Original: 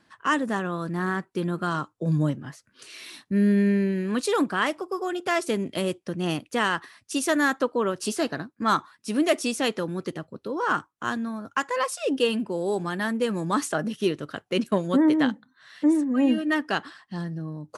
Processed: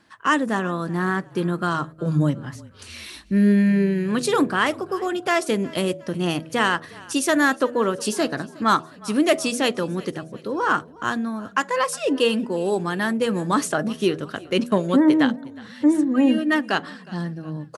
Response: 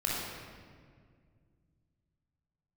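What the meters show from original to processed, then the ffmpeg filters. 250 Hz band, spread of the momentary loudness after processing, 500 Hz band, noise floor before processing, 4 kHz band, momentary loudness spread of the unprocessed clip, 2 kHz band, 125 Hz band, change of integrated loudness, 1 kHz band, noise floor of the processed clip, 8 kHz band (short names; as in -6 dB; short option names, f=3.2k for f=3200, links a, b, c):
+3.5 dB, 11 LU, +3.5 dB, -68 dBFS, +4.0 dB, 11 LU, +4.0 dB, +3.5 dB, +4.0 dB, +4.0 dB, -45 dBFS, +4.0 dB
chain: -filter_complex "[0:a]bandreject=f=80.44:t=h:w=4,bandreject=f=160.88:t=h:w=4,bandreject=f=241.32:t=h:w=4,bandreject=f=321.76:t=h:w=4,bandreject=f=402.2:t=h:w=4,bandreject=f=482.64:t=h:w=4,bandreject=f=563.08:t=h:w=4,bandreject=f=643.52:t=h:w=4,bandreject=f=723.96:t=h:w=4,asplit=4[a][b][c][d];[b]adelay=362,afreqshift=-34,volume=-22dB[e];[c]adelay=724,afreqshift=-68,volume=-28.9dB[f];[d]adelay=1086,afreqshift=-102,volume=-35.9dB[g];[a][e][f][g]amix=inputs=4:normalize=0,volume=4dB"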